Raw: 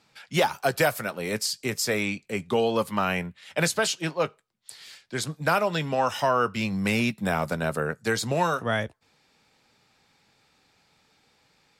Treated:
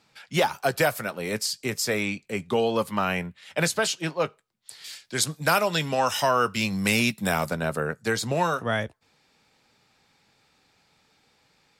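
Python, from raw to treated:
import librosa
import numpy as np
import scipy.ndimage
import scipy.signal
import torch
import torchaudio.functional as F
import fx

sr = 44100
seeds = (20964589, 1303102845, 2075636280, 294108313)

y = fx.high_shelf(x, sr, hz=3300.0, db=10.5, at=(4.84, 7.49))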